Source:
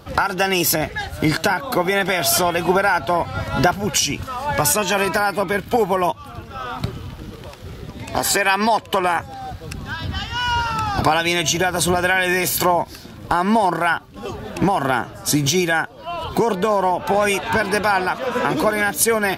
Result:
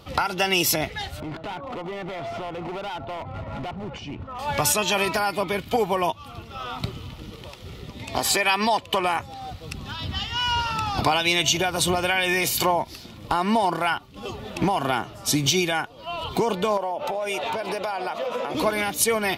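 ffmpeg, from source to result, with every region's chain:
-filter_complex "[0:a]asettb=1/sr,asplit=3[a][b][c];[a]atrim=end=1.204[d];[b]atrim=start=1.2:end=4.39,asetpts=PTS-STARTPTS,afade=t=in:d=0.004:c=qsin,afade=t=out:st=3.186:d=0.004:c=qsin,lowpass=1.1k,acompressor=threshold=-21dB:ratio=2.5:attack=3.2:release=140:knee=1:detection=peak,volume=24.5dB,asoftclip=hard,volume=-24.5dB[e];[c]atrim=start=4.386[f];[d][e]acrossfade=d=0.004:c1=hsin:c2=qsin[g];[g][f]acrossfade=d=0.004:c1=qsin:c2=hsin,asettb=1/sr,asplit=3[h][i][j];[h]atrim=end=16.774[k];[i]atrim=start=16.77:end=18.55,asetpts=PTS-STARTPTS,afade=t=in:d=0.004:c=qsin,afade=t=out:st=1.776:d=0.004:c=qsin,highpass=f=190:p=1,equalizer=f=590:t=o:w=0.95:g=10,acompressor=threshold=-19dB:ratio=10:attack=3.2:release=140:knee=1:detection=peak[l];[j]atrim=start=18.546[m];[k][l]acrossfade=d=0.004:c1=hsin:c2=qsin[n];[n][m]acrossfade=d=0.004:c1=qsin:c2=hsin,equalizer=f=3.2k:w=0.95:g=6,bandreject=f=1.6k:w=5.4,volume=-5dB"

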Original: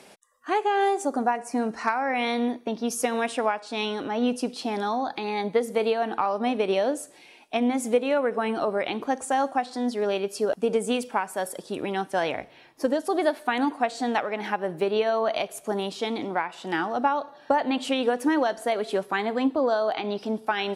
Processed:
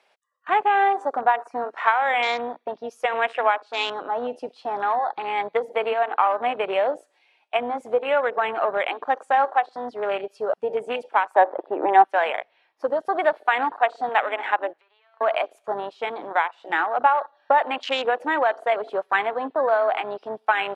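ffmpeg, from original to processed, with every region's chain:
-filter_complex "[0:a]asettb=1/sr,asplit=3[a][b][c];[a]atrim=end=11.354[d];[b]atrim=start=11.35:end=12.04,asetpts=PTS-STARTPTS,afade=t=in:d=0.004:c=qsin,afade=t=out:st=0.686:d=0.004:c=qsin,acontrast=79,highpass=f=250:w=0.5412,highpass=f=250:w=1.3066,equalizer=f=320:t=q:w=4:g=8,equalizer=f=820:t=q:w=4:g=7,equalizer=f=1.4k:t=q:w=4:g=-8,lowpass=f=2.2k:w=0.5412,lowpass=f=2.2k:w=1.3066[e];[c]atrim=start=12.036[f];[d][e]acrossfade=d=0.004:c1=hsin:c2=qsin[g];[g][f]acrossfade=d=0.004:c1=qsin:c2=hsin,asettb=1/sr,asplit=3[h][i][j];[h]atrim=end=14.734[k];[i]atrim=start=14.73:end=15.21,asetpts=PTS-STARTPTS,afade=t=in:d=0.004:c=qsin,afade=t=out:st=0.476:d=0.004:c=qsin,aeval=exprs='if(lt(val(0),0),0.447*val(0),val(0))':c=same,bandpass=f=2.4k:t=q:w=0.76,acompressor=threshold=-45dB:ratio=16:attack=3.2:release=140:knee=1:detection=peak[l];[j]atrim=start=15.206[m];[k][l]acrossfade=d=0.004:c1=hsin:c2=qsin[n];[n][m]acrossfade=d=0.004:c1=qsin:c2=hsin,acrossover=split=530 4300:gain=0.0631 1 0.158[o][p][q];[o][p][q]amix=inputs=3:normalize=0,afwtdn=0.0158,volume=7dB"

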